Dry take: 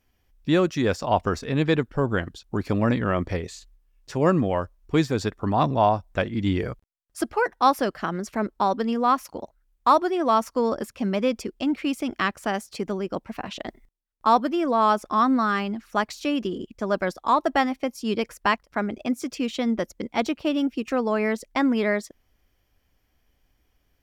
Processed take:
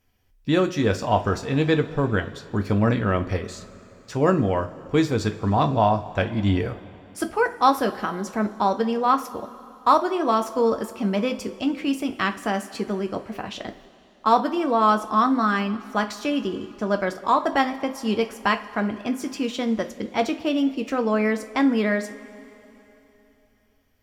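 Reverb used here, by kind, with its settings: two-slope reverb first 0.26 s, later 3.3 s, from -20 dB, DRR 5.5 dB

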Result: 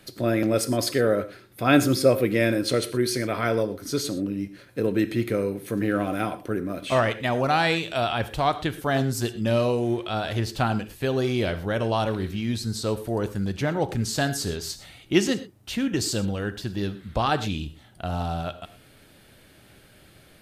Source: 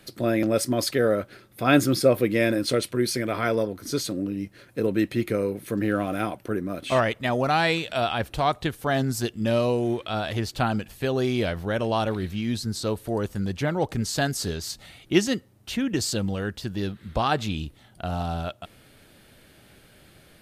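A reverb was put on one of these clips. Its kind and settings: non-linear reverb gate 0.14 s flat, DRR 11.5 dB

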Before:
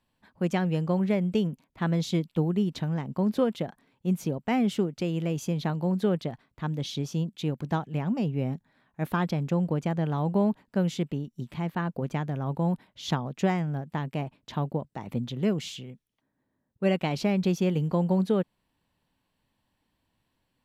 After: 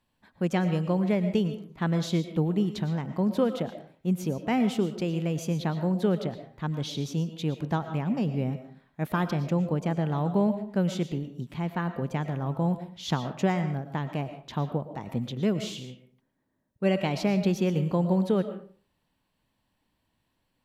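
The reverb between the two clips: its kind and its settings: digital reverb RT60 0.44 s, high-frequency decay 0.7×, pre-delay 75 ms, DRR 9.5 dB

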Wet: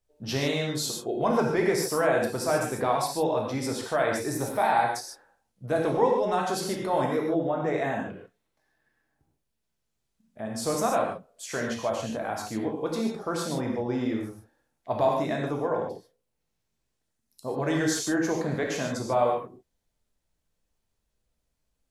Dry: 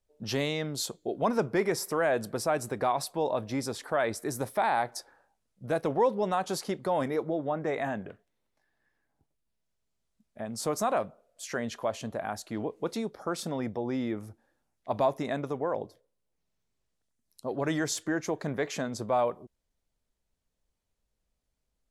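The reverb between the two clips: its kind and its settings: non-linear reverb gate 0.17 s flat, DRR -1 dB

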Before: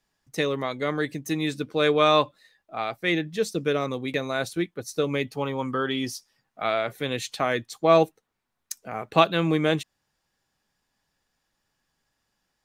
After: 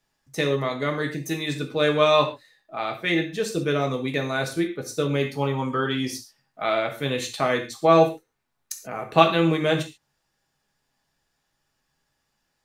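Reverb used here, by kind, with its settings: non-linear reverb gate 0.16 s falling, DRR 2.5 dB

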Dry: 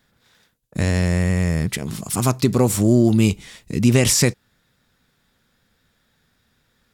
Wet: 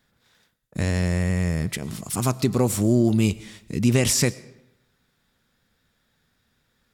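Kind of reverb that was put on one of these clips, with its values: digital reverb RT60 0.88 s, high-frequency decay 0.8×, pre-delay 65 ms, DRR 20 dB; gain -4 dB

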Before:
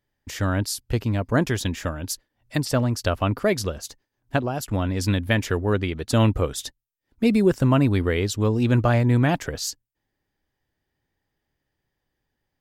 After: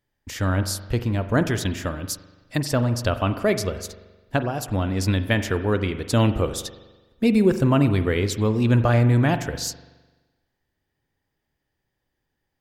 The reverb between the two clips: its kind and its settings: spring tank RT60 1.2 s, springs 42 ms, chirp 55 ms, DRR 10 dB

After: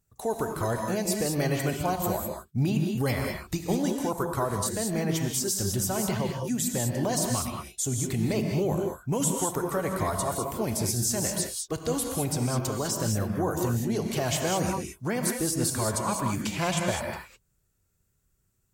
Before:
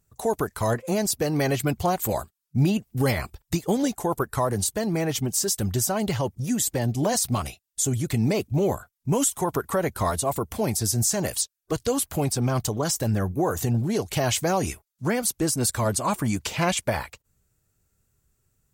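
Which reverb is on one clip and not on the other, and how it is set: non-linear reverb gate 0.23 s rising, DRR 2 dB; gain -5 dB

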